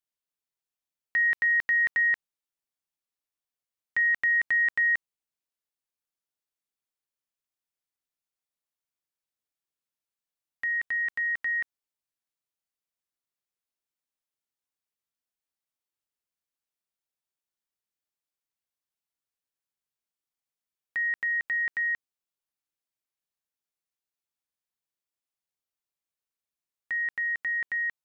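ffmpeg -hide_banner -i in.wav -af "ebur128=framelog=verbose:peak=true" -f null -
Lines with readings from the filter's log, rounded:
Integrated loudness:
  I:         -25.5 LUFS
  Threshold: -35.6 LUFS
Loudness range:
  LRA:        11.3 LU
  Threshold: -49.9 LUFS
  LRA low:   -37.6 LUFS
  LRA high:  -26.3 LUFS
True peak:
  Peak:      -19.8 dBFS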